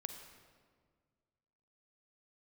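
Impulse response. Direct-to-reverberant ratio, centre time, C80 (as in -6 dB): 6.0 dB, 32 ms, 7.5 dB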